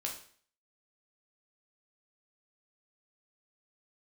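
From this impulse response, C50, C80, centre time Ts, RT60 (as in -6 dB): 7.5 dB, 11.5 dB, 24 ms, 0.50 s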